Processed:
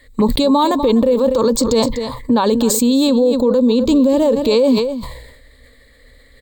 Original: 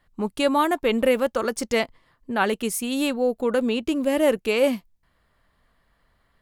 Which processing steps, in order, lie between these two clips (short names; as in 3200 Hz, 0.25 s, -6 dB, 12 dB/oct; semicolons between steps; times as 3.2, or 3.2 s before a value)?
ripple EQ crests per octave 1, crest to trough 14 dB; compressor 6:1, threshold -22 dBFS, peak gain reduction 13 dB; envelope phaser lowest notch 160 Hz, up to 2000 Hz, full sweep at -26.5 dBFS; echo 0.247 s -15.5 dB; maximiser +23.5 dB; sustainer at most 56 dB/s; gain -5.5 dB